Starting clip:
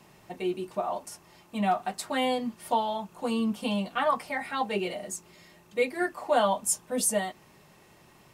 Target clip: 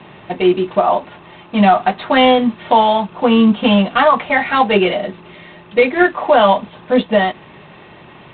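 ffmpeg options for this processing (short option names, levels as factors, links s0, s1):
-af "highpass=f=74:p=1,alimiter=level_in=8.41:limit=0.891:release=50:level=0:latency=1,volume=0.891" -ar 8000 -c:a adpcm_g726 -b:a 24k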